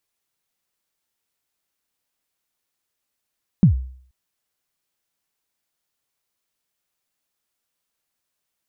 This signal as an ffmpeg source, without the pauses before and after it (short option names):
-f lavfi -i "aevalsrc='0.501*pow(10,-3*t/0.55)*sin(2*PI*(210*0.107/log(64/210)*(exp(log(64/210)*min(t,0.107)/0.107)-1)+64*max(t-0.107,0)))':d=0.48:s=44100"